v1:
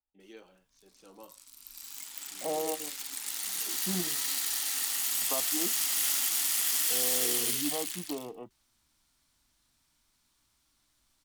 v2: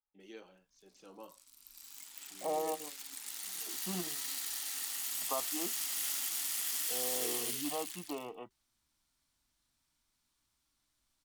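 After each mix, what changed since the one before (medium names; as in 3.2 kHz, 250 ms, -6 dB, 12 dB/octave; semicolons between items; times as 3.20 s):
second voice: add tilt shelf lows -7 dB, about 790 Hz; background -7.5 dB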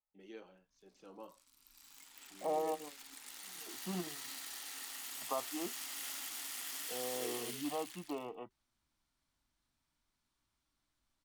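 master: add treble shelf 3.6 kHz -9.5 dB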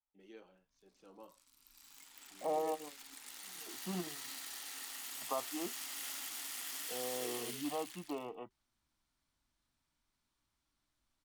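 first voice -4.0 dB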